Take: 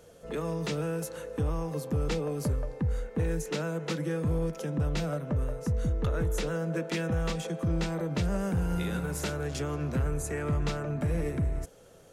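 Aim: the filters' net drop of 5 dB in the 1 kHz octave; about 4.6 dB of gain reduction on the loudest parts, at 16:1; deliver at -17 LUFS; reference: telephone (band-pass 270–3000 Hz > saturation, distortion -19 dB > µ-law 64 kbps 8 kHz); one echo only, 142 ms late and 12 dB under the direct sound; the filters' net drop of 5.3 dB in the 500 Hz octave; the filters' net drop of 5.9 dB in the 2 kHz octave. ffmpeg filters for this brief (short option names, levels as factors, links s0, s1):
-af "equalizer=f=500:t=o:g=-4.5,equalizer=f=1000:t=o:g=-3.5,equalizer=f=2000:t=o:g=-5.5,acompressor=threshold=0.0355:ratio=16,highpass=270,lowpass=3000,aecho=1:1:142:0.251,asoftclip=threshold=0.0251,volume=18.8" -ar 8000 -c:a pcm_mulaw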